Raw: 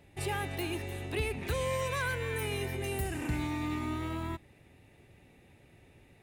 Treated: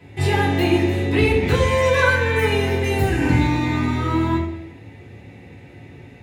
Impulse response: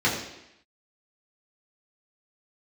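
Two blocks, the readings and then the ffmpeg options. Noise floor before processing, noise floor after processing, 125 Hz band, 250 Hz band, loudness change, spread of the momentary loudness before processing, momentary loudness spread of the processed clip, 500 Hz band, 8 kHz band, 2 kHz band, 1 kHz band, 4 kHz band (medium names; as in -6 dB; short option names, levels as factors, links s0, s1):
-61 dBFS, -43 dBFS, +16.5 dB, +17.0 dB, +15.5 dB, 5 LU, 5 LU, +16.0 dB, +7.0 dB, +15.5 dB, +15.0 dB, +13.0 dB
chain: -filter_complex "[1:a]atrim=start_sample=2205[s0];[0:a][s0]afir=irnorm=-1:irlink=0"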